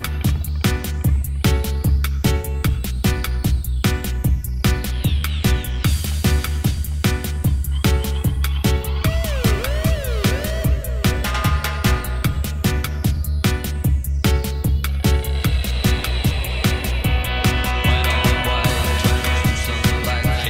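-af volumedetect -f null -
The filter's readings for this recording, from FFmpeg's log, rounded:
mean_volume: -18.6 dB
max_volume: -4.6 dB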